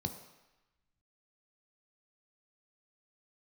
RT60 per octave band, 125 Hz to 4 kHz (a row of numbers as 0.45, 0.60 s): 0.85, 0.85, 0.95, 1.1, 1.2, 1.0 s